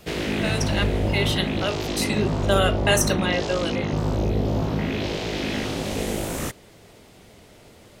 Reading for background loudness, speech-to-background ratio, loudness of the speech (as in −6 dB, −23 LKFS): −25.5 LKFS, 0.0 dB, −25.5 LKFS